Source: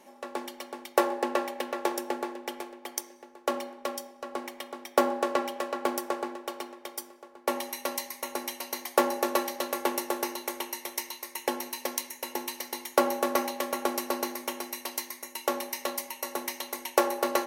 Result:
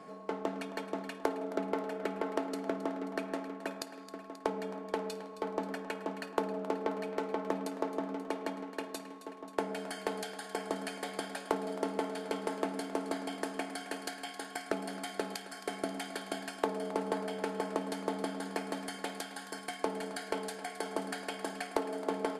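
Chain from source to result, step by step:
steady tone 1,400 Hz −56 dBFS
downward compressor 5 to 1, threshold −35 dBFS, peak gain reduction 16.5 dB
low-pass filter 2,500 Hz 6 dB per octave
speed change −22%
on a send: feedback echo with a high-pass in the loop 267 ms, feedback 71%, level −13.5 dB
on the sum: level +4.5 dB

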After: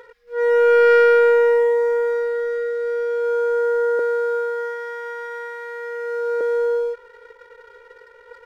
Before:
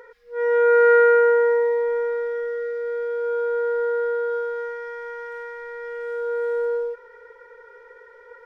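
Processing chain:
0:03.99–0:06.41: high-pass filter 380 Hz 24 dB per octave
leveller curve on the samples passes 1

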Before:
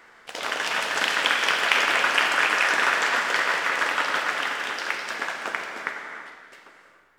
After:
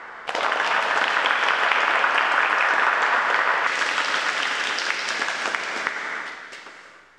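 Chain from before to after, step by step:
parametric band 980 Hz +9.5 dB 2.2 octaves, from 0:03.67 6,500 Hz
downward compressor 2.5 to 1, threshold −29 dBFS, peak gain reduction 13 dB
high-frequency loss of the air 64 metres
level +7 dB

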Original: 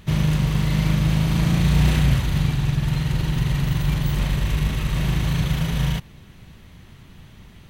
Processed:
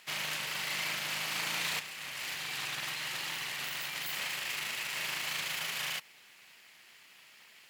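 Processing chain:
lower of the sound and its delayed copy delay 0.41 ms
high-pass filter 1,100 Hz 12 dB per octave
0:01.79–0:03.99: compressor whose output falls as the input rises −39 dBFS, ratio −1

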